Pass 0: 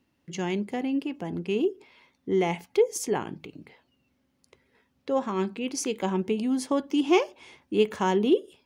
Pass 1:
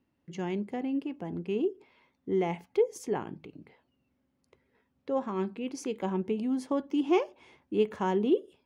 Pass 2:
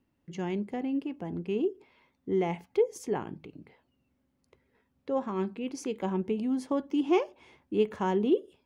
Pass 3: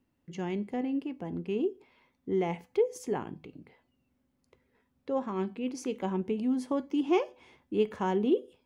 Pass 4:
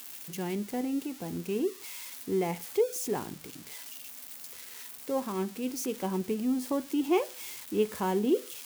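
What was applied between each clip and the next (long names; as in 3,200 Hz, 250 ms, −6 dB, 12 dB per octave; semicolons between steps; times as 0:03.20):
high-shelf EQ 2,600 Hz −10.5 dB; level −3.5 dB
low-shelf EQ 72 Hz +6.5 dB
tuned comb filter 250 Hz, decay 0.36 s, harmonics all, mix 50%; level +4.5 dB
spike at every zero crossing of −31 dBFS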